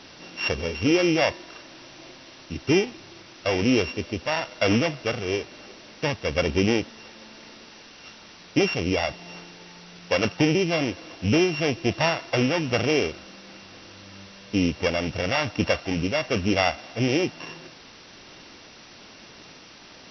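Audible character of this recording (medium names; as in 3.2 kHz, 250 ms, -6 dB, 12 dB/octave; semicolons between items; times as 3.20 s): a buzz of ramps at a fixed pitch in blocks of 16 samples; tremolo triangle 1.1 Hz, depth 40%; a quantiser's noise floor 8-bit, dither triangular; MP2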